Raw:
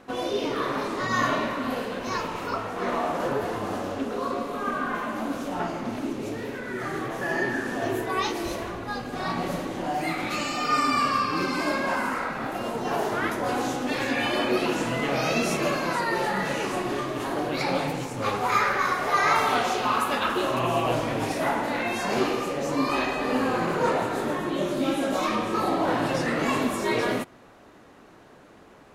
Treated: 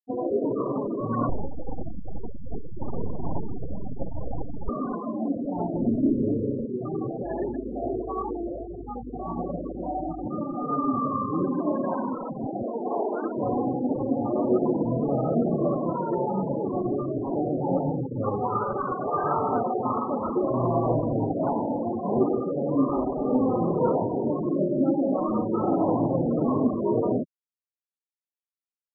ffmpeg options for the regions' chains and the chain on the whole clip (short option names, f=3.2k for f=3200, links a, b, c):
-filter_complex "[0:a]asettb=1/sr,asplit=3[a][b][c];[a]atrim=end=1.294[d];[b]atrim=start=1.29:end=4.69,asetpts=PTS-STARTPTS,afade=t=in:d=0.004:c=qsin,afade=t=out:st=3.396:d=0.004:c=qsin,highpass=60,aecho=1:1:466:0.316,atrim=end_sample=149940,aeval=exprs='abs(val(0))':c=same[e];[c]atrim=start=4.686[f];[d][e]acrossfade=d=0.004:c1=hsin:c2=qsin[g];[g][f]acrossfade=d=0.004:c1=qsin:c2=hsin,asettb=1/sr,asplit=3[h][i][j];[h]atrim=end=5.744[k];[i]atrim=start=5.74:end=6.66,asetpts=PTS-STARTPTS,afade=t=in:d=0.004:c=qsin,afade=t=out:st=0.916:d=0.004:c=qsin,tiltshelf=f=720:g=5.5,asplit=2[l][m];[m]adelay=31,volume=-8dB[n];[l][n]amix=inputs=2:normalize=0,atrim=end_sample=40572[o];[j]atrim=start=6.656[p];[k][o]acrossfade=d=0.004:c1=hsin:c2=qsin[q];[q][p]acrossfade=d=0.004:c1=qsin:c2=hsin,asettb=1/sr,asplit=3[r][s][t];[r]atrim=end=7.234[u];[s]atrim=start=7.23:end=10.26,asetpts=PTS-STARTPTS,afade=t=in:d=0.004:c=qsin,afade=t=out:st=3.026:d=0.004:c=qsin,highpass=f=350:p=1,aeval=exprs='val(0)+0.00501*(sin(2*PI*50*n/s)+sin(2*PI*2*50*n/s)/2+sin(2*PI*3*50*n/s)/3+sin(2*PI*4*50*n/s)/4+sin(2*PI*5*50*n/s)/5)':c=same,asplit=2[v][w];[w]adelay=17,volume=-14dB[x];[v][x]amix=inputs=2:normalize=0,atrim=end_sample=133623[y];[t]atrim=start=10.256[z];[u][y]acrossfade=d=0.004:c1=hsin:c2=qsin[aa];[aa][z]acrossfade=d=0.004:c1=qsin:c2=hsin,asettb=1/sr,asplit=3[ab][ac][ad];[ab]atrim=end=12.664[ae];[ac]atrim=start=12.66:end=13.36,asetpts=PTS-STARTPTS,afade=t=in:d=0.004:c=qsin,afade=t=out:st=0.696:d=0.004:c=qsin,acrusher=bits=3:mode=log:mix=0:aa=0.000001,highpass=280,lowpass=6.2k[af];[ad]atrim=start=13.356[ag];[ae][af]acrossfade=d=0.004:c1=hsin:c2=qsin[ah];[ah][ag]acrossfade=d=0.004:c1=qsin:c2=hsin,lowpass=f=1.4k:w=0.5412,lowpass=f=1.4k:w=1.3066,tiltshelf=f=970:g=7.5,afftfilt=real='re*gte(hypot(re,im),0.1)':imag='im*gte(hypot(re,im),0.1)':win_size=1024:overlap=0.75,volume=-2.5dB"